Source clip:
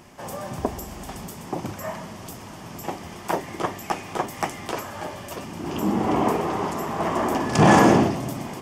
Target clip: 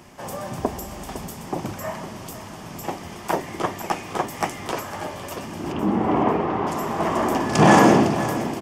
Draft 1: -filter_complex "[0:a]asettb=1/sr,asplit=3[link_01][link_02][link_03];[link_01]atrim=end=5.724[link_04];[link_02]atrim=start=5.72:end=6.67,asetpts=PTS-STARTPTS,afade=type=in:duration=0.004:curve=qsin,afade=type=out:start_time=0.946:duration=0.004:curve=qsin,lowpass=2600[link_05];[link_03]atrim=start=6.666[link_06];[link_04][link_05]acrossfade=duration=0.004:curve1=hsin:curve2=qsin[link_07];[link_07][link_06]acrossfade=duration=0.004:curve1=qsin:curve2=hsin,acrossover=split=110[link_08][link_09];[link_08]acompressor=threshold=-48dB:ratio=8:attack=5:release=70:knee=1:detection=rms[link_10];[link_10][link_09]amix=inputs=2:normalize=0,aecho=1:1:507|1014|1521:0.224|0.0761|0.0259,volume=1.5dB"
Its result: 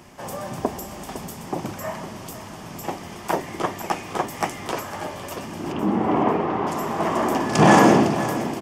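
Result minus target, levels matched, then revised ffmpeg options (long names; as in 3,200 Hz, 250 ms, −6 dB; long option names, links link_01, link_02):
downward compressor: peak gain reduction +8 dB
-filter_complex "[0:a]asettb=1/sr,asplit=3[link_01][link_02][link_03];[link_01]atrim=end=5.724[link_04];[link_02]atrim=start=5.72:end=6.67,asetpts=PTS-STARTPTS,afade=type=in:duration=0.004:curve=qsin,afade=type=out:start_time=0.946:duration=0.004:curve=qsin,lowpass=2600[link_05];[link_03]atrim=start=6.666[link_06];[link_04][link_05]acrossfade=duration=0.004:curve1=hsin:curve2=qsin[link_07];[link_07][link_06]acrossfade=duration=0.004:curve1=qsin:curve2=hsin,acrossover=split=110[link_08][link_09];[link_08]acompressor=threshold=-39dB:ratio=8:attack=5:release=70:knee=1:detection=rms[link_10];[link_10][link_09]amix=inputs=2:normalize=0,aecho=1:1:507|1014|1521:0.224|0.0761|0.0259,volume=1.5dB"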